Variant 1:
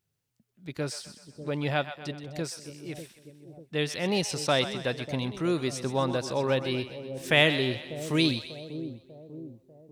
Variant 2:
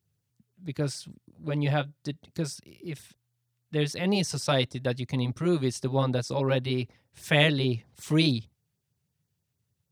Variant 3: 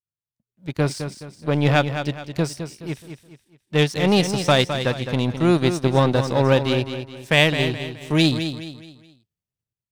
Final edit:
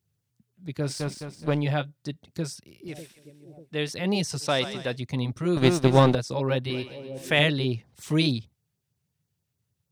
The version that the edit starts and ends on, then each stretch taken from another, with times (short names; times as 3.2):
2
0.95–1.53 from 3, crossfade 0.24 s
2.88–3.89 from 1
4.45–4.93 from 1, crossfade 0.10 s
5.57–6.15 from 3
6.7–7.39 from 1